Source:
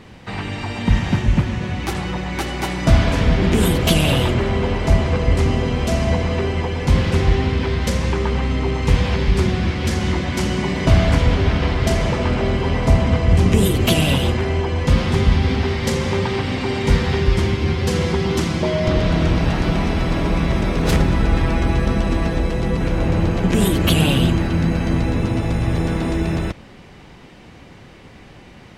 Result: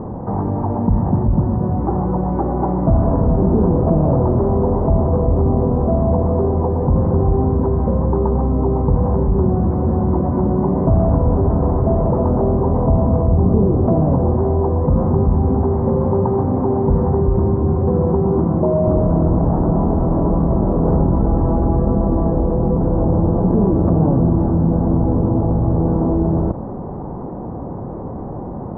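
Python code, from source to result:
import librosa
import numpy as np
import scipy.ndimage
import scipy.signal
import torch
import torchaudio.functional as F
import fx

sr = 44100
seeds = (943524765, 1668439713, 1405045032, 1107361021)

y = scipy.signal.sosfilt(scipy.signal.butter(6, 1000.0, 'lowpass', fs=sr, output='sos'), x)
y = fx.low_shelf(y, sr, hz=66.0, db=-6.0)
y = fx.env_flatten(y, sr, amount_pct=50)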